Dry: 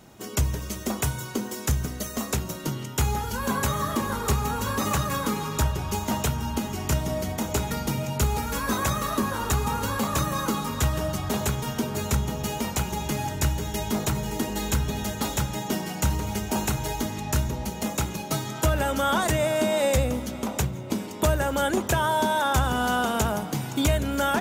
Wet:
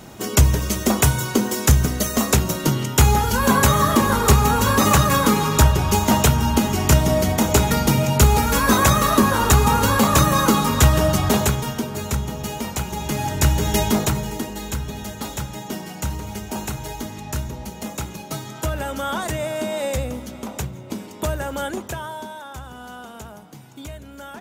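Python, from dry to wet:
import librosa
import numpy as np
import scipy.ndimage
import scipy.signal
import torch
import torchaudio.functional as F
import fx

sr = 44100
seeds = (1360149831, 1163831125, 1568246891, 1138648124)

y = fx.gain(x, sr, db=fx.line((11.27, 10.0), (11.87, 1.0), (12.88, 1.0), (13.76, 10.5), (14.56, -2.0), (21.62, -2.0), (22.46, -13.5)))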